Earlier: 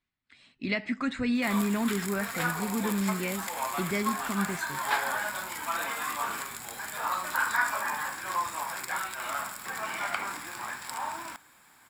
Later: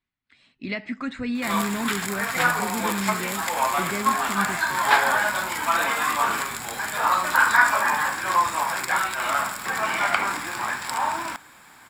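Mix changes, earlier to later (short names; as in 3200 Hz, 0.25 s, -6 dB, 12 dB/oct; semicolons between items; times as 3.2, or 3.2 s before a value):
background +10.0 dB; master: add high shelf 8000 Hz -7 dB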